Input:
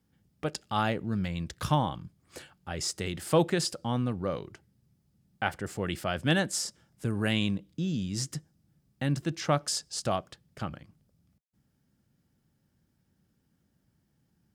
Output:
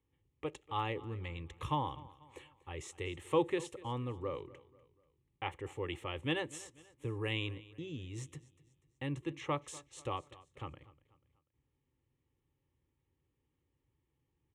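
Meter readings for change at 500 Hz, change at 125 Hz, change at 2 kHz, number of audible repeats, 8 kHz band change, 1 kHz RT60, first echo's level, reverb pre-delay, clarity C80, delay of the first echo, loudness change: -6.5 dB, -10.0 dB, -8.5 dB, 2, -16.0 dB, none, -20.0 dB, none, none, 0.244 s, -8.5 dB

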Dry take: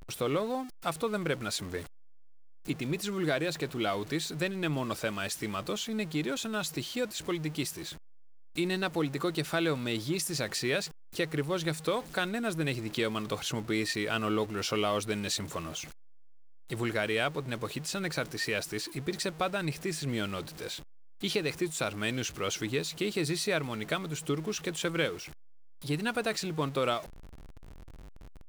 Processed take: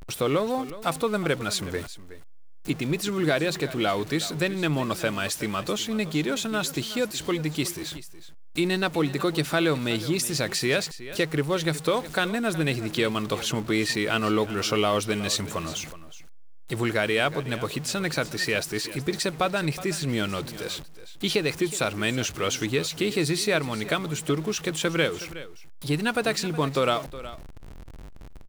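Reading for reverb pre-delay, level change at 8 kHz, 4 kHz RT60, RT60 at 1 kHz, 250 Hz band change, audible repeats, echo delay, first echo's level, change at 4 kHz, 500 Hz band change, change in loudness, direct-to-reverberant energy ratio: none, +6.0 dB, none, none, +6.0 dB, 1, 0.368 s, -15.5 dB, +6.0 dB, +6.0 dB, +6.0 dB, none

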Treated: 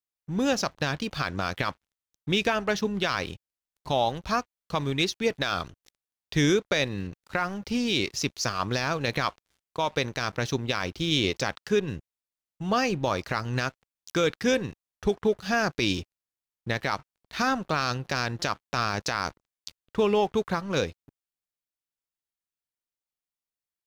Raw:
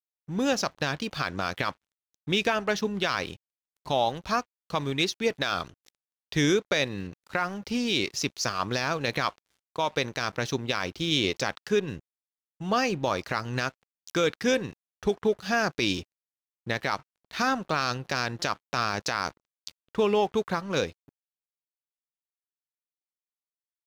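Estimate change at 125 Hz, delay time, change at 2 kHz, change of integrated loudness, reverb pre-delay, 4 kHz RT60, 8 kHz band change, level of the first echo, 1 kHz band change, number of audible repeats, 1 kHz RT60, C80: +3.0 dB, none, 0.0 dB, +0.5 dB, none, none, 0.0 dB, none, 0.0 dB, none, none, none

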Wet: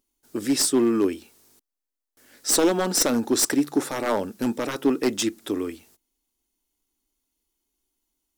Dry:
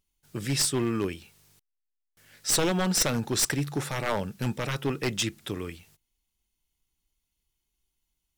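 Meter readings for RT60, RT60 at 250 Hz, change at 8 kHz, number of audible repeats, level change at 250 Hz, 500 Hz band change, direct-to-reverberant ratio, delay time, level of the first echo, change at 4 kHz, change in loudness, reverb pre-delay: none, none, +3.5 dB, none, +8.0 dB, +7.0 dB, none, none, none, +1.5 dB, +4.5 dB, none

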